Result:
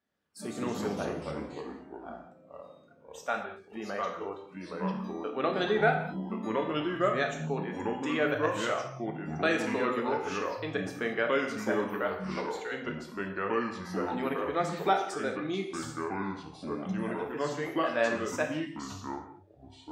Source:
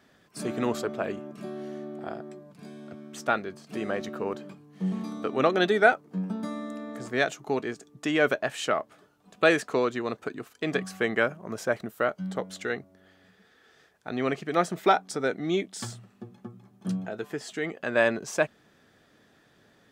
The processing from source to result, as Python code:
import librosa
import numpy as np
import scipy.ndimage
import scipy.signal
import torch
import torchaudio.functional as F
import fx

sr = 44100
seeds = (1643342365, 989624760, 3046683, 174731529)

y = fx.noise_reduce_blind(x, sr, reduce_db=18)
y = fx.echo_pitch(y, sr, ms=82, semitones=-3, count=3, db_per_echo=-3.0)
y = fx.rev_gated(y, sr, seeds[0], gate_ms=250, shape='falling', drr_db=2.5)
y = y * 10.0 ** (-7.0 / 20.0)